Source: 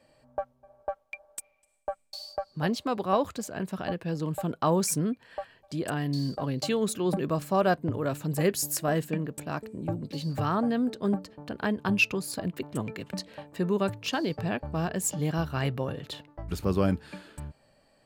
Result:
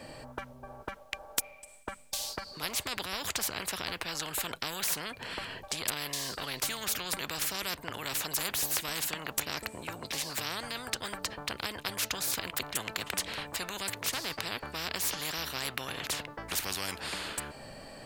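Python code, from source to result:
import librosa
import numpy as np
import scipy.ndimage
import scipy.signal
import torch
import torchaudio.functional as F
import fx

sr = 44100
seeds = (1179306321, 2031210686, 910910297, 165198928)

y = fx.spectral_comp(x, sr, ratio=10.0)
y = y * 10.0 ** (6.5 / 20.0)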